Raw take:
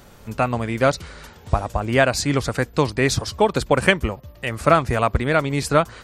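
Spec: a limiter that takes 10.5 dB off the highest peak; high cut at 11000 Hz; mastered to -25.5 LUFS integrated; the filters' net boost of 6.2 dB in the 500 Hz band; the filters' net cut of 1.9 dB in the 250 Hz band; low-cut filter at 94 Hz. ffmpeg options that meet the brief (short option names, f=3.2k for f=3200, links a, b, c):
-af "highpass=94,lowpass=11k,equalizer=f=250:t=o:g=-5.5,equalizer=f=500:t=o:g=9,volume=-3dB,alimiter=limit=-12.5dB:level=0:latency=1"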